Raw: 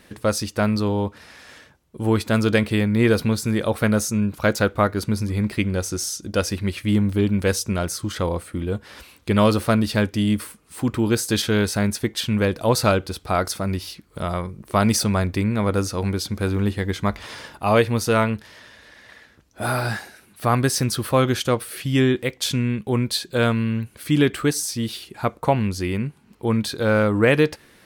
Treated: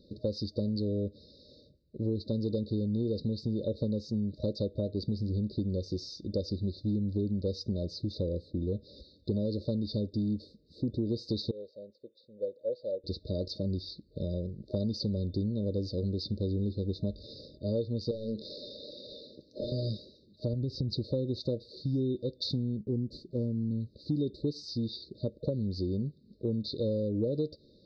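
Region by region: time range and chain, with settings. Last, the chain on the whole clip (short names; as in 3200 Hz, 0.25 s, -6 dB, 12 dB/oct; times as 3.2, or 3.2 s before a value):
11.51–13.04 vowel filter e + upward expander, over -35 dBFS
18.11–19.72 HPF 140 Hz 6 dB/oct + compressor, threshold -33 dBFS + overdrive pedal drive 27 dB, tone 2400 Hz, clips at -12.5 dBFS
20.53–20.93 bell 68 Hz +10 dB 2.7 oct + compressor 8:1, threshold -19 dBFS + LPF 2800 Hz 6 dB/oct
22.77–23.71 CVSD 64 kbps + Chebyshev band-stop 340–9000 Hz
whole clip: Chebyshev low-pass 4800 Hz, order 5; FFT band-reject 620–3600 Hz; compressor, threshold -23 dBFS; gain -4.5 dB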